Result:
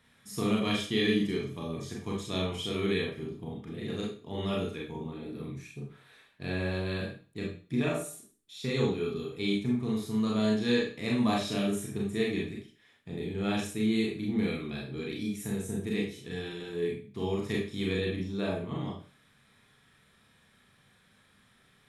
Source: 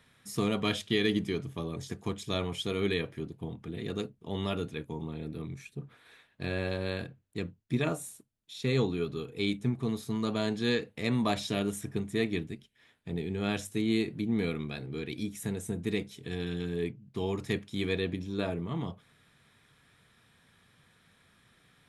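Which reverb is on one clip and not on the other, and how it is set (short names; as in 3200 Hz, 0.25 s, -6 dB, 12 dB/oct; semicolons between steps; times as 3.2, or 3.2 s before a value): Schroeder reverb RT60 0.39 s, combs from 29 ms, DRR -2.5 dB; gain -4 dB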